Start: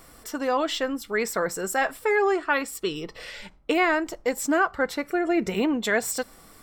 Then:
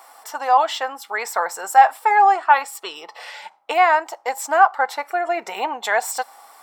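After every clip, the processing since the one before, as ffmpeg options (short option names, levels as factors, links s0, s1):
-af "highpass=f=820:t=q:w=6.2,volume=1.19"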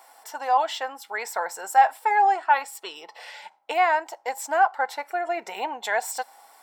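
-af "bandreject=f=1200:w=5.9,volume=0.562"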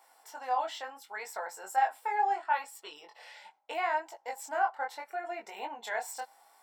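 -af "flanger=delay=19:depth=5.7:speed=0.73,volume=0.473"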